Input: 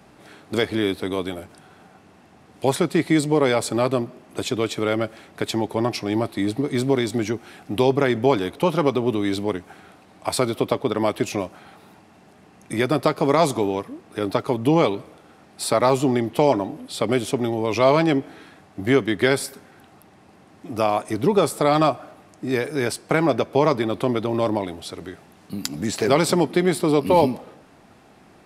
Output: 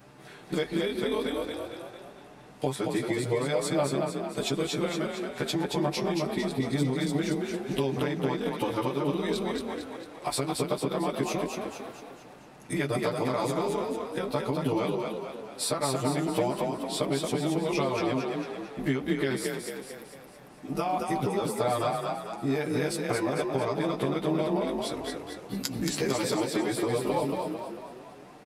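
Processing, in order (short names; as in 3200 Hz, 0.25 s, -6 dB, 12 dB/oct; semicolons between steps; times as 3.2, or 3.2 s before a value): short-time reversal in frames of 30 ms; compressor, threshold -27 dBFS, peak gain reduction 14 dB; comb 6.8 ms, depth 55%; frequency-shifting echo 0.225 s, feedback 51%, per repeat +33 Hz, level -4 dB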